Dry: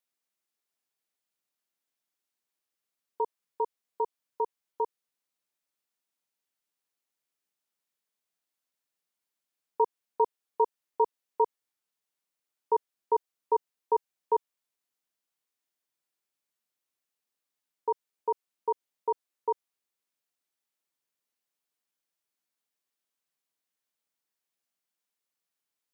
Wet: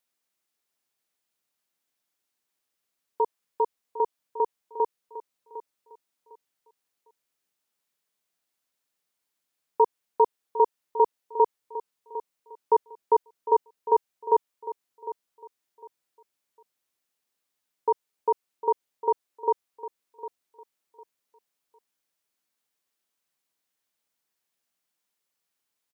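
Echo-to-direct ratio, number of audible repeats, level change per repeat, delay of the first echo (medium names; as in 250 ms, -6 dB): -13.5 dB, 2, -12.0 dB, 754 ms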